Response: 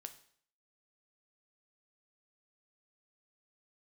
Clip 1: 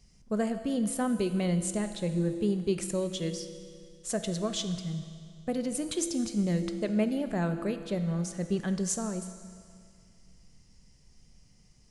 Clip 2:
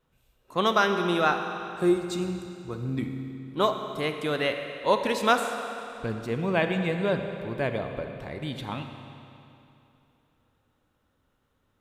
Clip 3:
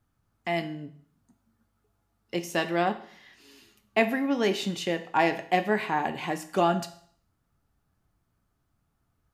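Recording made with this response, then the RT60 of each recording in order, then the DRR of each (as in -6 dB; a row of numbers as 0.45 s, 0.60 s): 3; 2.2 s, 2.9 s, 0.60 s; 8.5 dB, 6.0 dB, 8.0 dB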